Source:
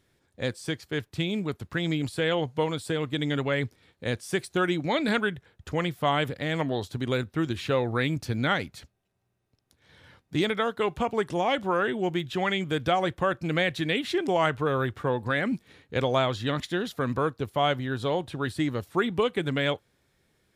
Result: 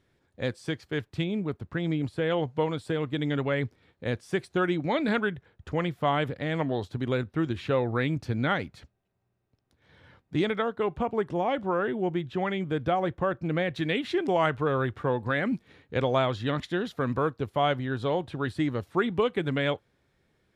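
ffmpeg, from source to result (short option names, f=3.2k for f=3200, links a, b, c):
-af "asetnsamples=n=441:p=0,asendcmd='1.24 lowpass f 1200;2.3 lowpass f 2100;10.62 lowpass f 1100;13.76 lowpass f 2800',lowpass=f=3k:p=1"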